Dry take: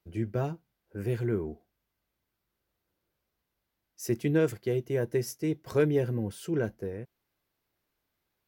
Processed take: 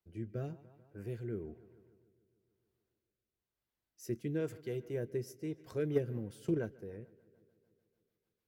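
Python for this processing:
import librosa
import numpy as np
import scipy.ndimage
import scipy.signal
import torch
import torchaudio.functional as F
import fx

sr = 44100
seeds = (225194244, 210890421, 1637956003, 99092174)

y = fx.echo_filtered(x, sr, ms=147, feedback_pct=69, hz=4300.0, wet_db=-21.0)
y = fx.transient(y, sr, attack_db=11, sustain_db=-1, at=(5.94, 6.57), fade=0.02)
y = fx.rotary_switch(y, sr, hz=1.0, then_hz=6.7, switch_at_s=5.41)
y = F.gain(torch.from_numpy(y), -8.0).numpy()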